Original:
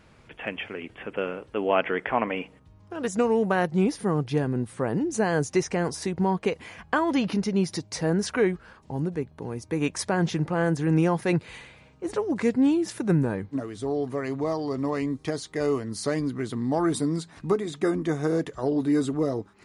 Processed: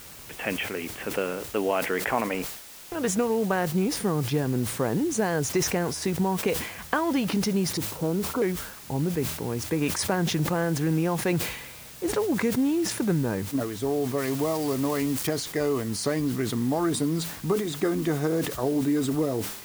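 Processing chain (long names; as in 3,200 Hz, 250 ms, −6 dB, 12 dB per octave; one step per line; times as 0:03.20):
0:14.18–0:15.27: spike at every zero crossing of −25 dBFS
downward compressor 4 to 1, threshold −25 dBFS, peak gain reduction 7.5 dB
0:02.34–0:02.95: slack as between gear wheels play −33 dBFS
0:07.77–0:08.42: Chebyshev low-pass with heavy ripple 1,400 Hz, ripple 3 dB
bit-depth reduction 8 bits, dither triangular
level that may fall only so fast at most 72 dB per second
level +3 dB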